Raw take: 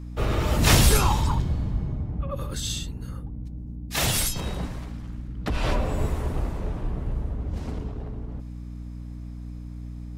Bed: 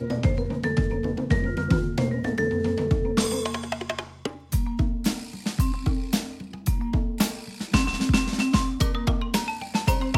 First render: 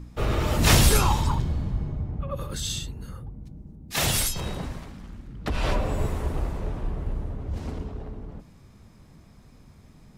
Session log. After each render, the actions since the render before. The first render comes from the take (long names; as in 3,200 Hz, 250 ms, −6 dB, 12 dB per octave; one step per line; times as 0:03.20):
hum removal 60 Hz, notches 5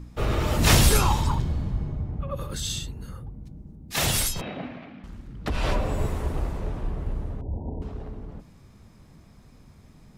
0:04.41–0:05.04: loudspeaker in its box 190–3,300 Hz, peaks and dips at 260 Hz +7 dB, 400 Hz −4 dB, 680 Hz +6 dB, 980 Hz −6 dB, 2,400 Hz +6 dB
0:07.41–0:07.82: linear-phase brick-wall low-pass 1,000 Hz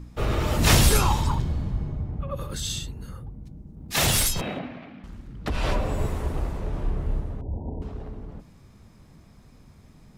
0:03.76–0:04.59: leveller curve on the samples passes 1
0:06.70–0:07.20: double-tracking delay 28 ms −4 dB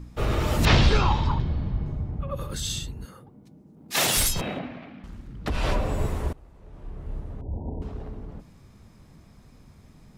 0:00.65–0:01.86: low-pass filter 4,500 Hz 24 dB per octave
0:03.05–0:04.17: high-pass filter 230 Hz
0:06.33–0:07.60: fade in quadratic, from −23.5 dB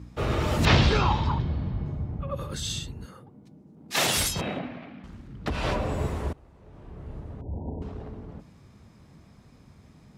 high-pass filter 62 Hz
high-shelf EQ 11,000 Hz −11 dB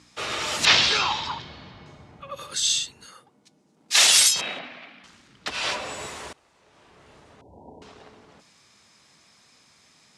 meter weighting curve ITU-R 468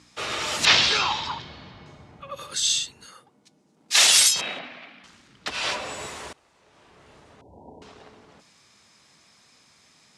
no processing that can be heard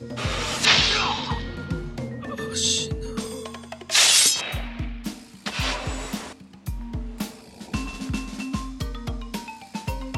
mix in bed −7.5 dB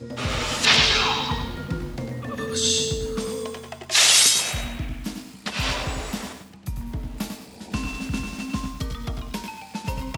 repeating echo 97 ms, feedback 26%, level −8 dB
feedback echo at a low word length 113 ms, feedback 35%, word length 7 bits, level −10 dB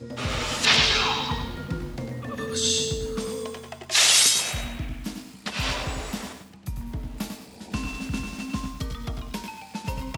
level −2 dB